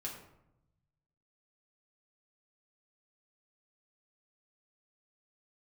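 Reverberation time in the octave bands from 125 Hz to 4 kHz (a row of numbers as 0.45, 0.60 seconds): 1.7, 1.2, 0.90, 0.80, 0.60, 0.45 seconds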